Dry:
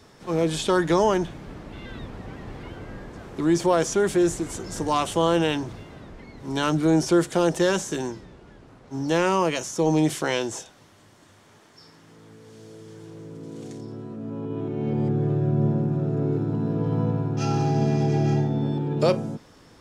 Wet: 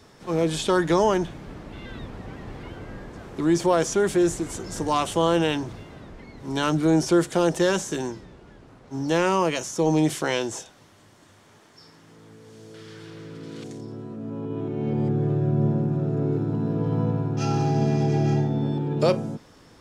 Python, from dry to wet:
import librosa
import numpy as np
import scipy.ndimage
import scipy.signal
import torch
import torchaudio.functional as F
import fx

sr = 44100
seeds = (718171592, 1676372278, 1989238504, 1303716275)

y = fx.band_shelf(x, sr, hz=2500.0, db=9.5, octaves=2.3, at=(12.74, 13.64))